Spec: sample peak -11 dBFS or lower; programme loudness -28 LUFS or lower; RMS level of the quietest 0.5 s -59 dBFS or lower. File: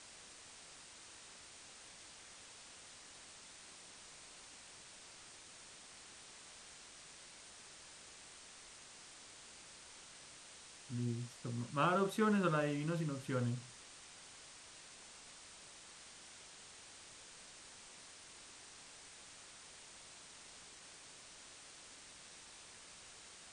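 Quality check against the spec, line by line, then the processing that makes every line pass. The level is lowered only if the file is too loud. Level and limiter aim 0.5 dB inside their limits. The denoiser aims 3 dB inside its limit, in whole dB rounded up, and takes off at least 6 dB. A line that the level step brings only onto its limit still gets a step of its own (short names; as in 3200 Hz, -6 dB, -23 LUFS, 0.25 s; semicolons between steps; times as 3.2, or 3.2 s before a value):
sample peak -21.5 dBFS: OK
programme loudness -45.5 LUFS: OK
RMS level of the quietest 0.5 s -57 dBFS: fail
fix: denoiser 6 dB, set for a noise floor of -57 dBFS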